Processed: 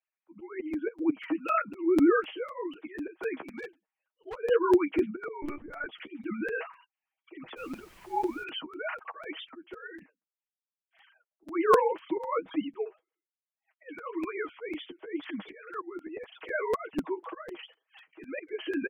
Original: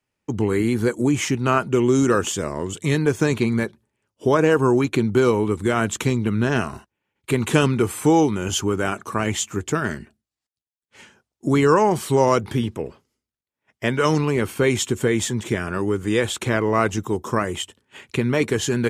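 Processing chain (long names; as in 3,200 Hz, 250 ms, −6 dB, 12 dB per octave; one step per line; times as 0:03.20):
three sine waves on the formant tracks
low-shelf EQ 260 Hz −3.5 dB
comb filter 6.3 ms, depth 80%
volume swells 292 ms
flanger 1.9 Hz, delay 5.2 ms, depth 8.6 ms, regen +15%
0:03.43–0:04.38: hard clipping −30 dBFS, distortion −31 dB
0:05.42–0:05.86: one-pitch LPC vocoder at 8 kHz 290 Hz
0:07.56–0:08.43: background noise pink −53 dBFS
regular buffer underruns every 0.25 s, samples 256, repeat, from 0:00.73
level −4.5 dB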